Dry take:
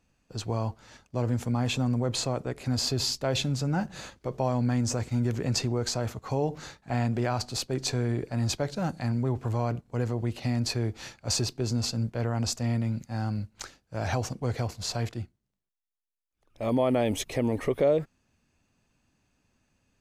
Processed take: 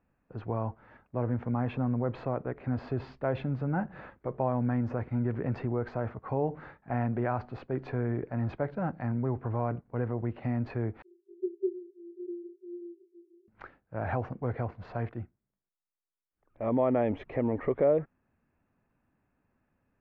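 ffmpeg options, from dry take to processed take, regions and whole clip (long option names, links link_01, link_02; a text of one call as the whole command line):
ffmpeg -i in.wav -filter_complex "[0:a]asettb=1/sr,asplit=3[link_01][link_02][link_03];[link_01]atrim=end=11.024[link_04];[link_02]atrim=start=11.02:end=13.48,asetpts=PTS-STARTPTS,afade=type=in:duration=0.004:curve=qsin,afade=type=out:start_time=2.456:duration=0.004:curve=qsin,asuperpass=centerf=370:order=20:qfactor=6.1,acontrast=54[link_05];[link_03]atrim=start=13.476[link_06];[link_04][link_05]acrossfade=duration=0.004:curve1=hsin:curve2=qsin[link_07];[link_07][link_06]acrossfade=duration=0.004:curve1=qsin:curve2=hsin,lowpass=frequency=1900:width=0.5412,lowpass=frequency=1900:width=1.3066,lowshelf=frequency=130:gain=-5,volume=-1dB" out.wav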